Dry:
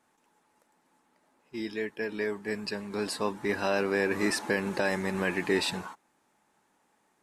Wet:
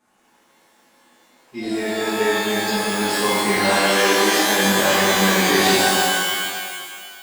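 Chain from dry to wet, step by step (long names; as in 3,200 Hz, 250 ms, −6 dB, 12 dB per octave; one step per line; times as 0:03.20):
0:03.74–0:04.59: bass and treble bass −11 dB, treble −7 dB
reverb with rising layers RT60 1.9 s, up +12 semitones, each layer −2 dB, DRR −10 dB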